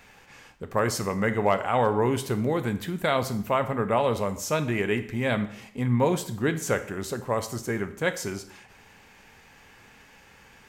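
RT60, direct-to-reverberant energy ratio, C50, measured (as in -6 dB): 0.60 s, 10.0 dB, 13.5 dB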